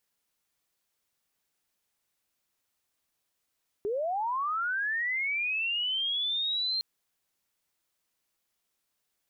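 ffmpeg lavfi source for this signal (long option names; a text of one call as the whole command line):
ffmpeg -f lavfi -i "aevalsrc='pow(10,(-27.5+0.5*t/2.96)/20)*sin(2*PI*(390*t+3810*t*t/(2*2.96)))':duration=2.96:sample_rate=44100" out.wav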